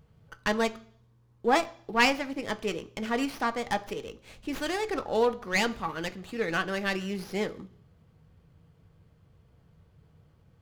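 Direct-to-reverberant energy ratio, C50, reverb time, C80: 9.0 dB, 18.5 dB, 0.55 s, 22.5 dB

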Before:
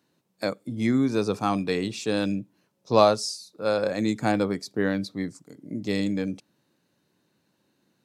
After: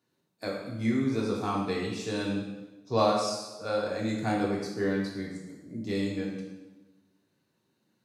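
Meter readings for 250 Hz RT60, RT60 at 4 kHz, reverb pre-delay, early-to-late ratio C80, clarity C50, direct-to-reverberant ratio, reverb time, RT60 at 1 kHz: 1.3 s, 1.0 s, 3 ms, 4.5 dB, 2.5 dB, -4.0 dB, 1.2 s, 1.1 s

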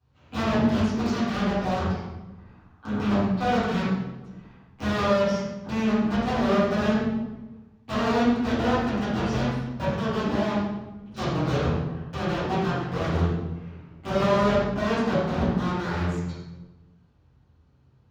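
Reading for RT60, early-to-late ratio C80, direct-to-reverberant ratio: 1.1 s, 1.5 dB, -14.5 dB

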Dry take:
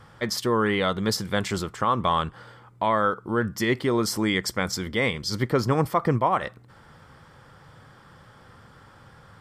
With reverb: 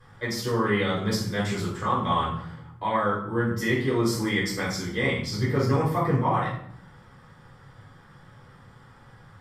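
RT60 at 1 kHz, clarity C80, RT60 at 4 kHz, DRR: 0.65 s, 8.0 dB, 0.50 s, -7.0 dB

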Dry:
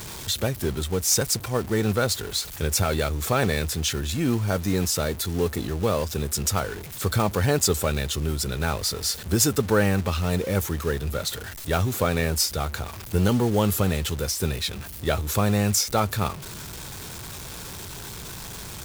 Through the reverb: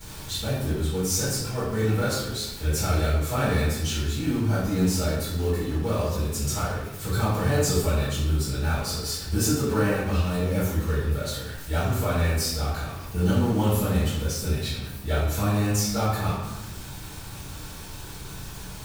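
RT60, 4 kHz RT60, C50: 1.0 s, 0.70 s, 0.0 dB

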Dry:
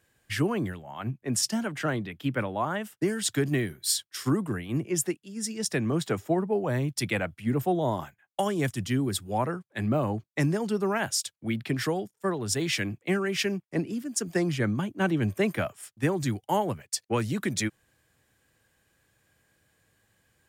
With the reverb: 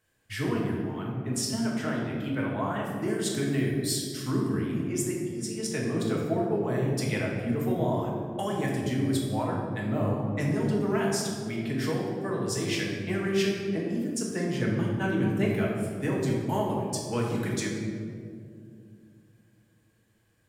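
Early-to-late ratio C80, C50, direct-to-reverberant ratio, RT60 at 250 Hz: 3.0 dB, 1.0 dB, -3.5 dB, 3.3 s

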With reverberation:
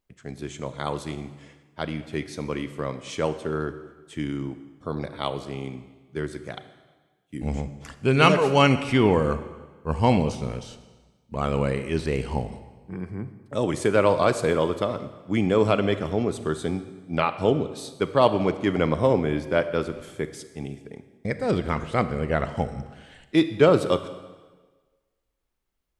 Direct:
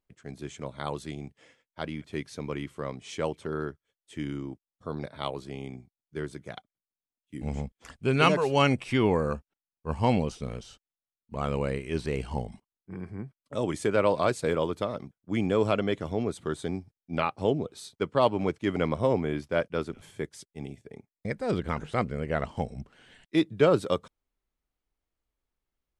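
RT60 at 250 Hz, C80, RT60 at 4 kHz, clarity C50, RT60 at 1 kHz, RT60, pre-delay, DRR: 1.4 s, 13.5 dB, 1.2 s, 12.0 dB, 1.3 s, 1.3 s, 29 ms, 11.0 dB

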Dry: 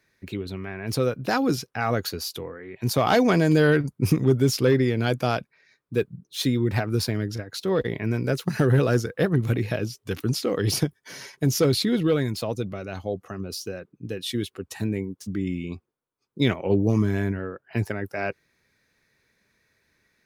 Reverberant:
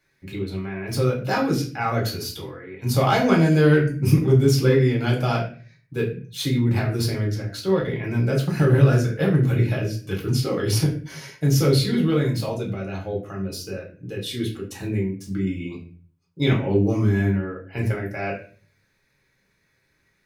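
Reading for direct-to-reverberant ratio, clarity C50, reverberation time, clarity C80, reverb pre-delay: -3.0 dB, 8.5 dB, 0.40 s, 12.5 dB, 3 ms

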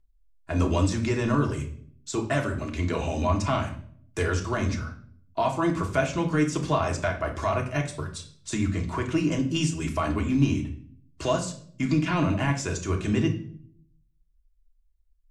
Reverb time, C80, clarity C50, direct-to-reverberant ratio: 0.55 s, 14.0 dB, 10.5 dB, 0.5 dB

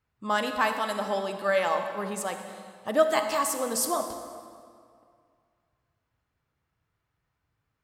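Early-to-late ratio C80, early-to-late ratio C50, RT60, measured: 8.0 dB, 6.5 dB, 2.2 s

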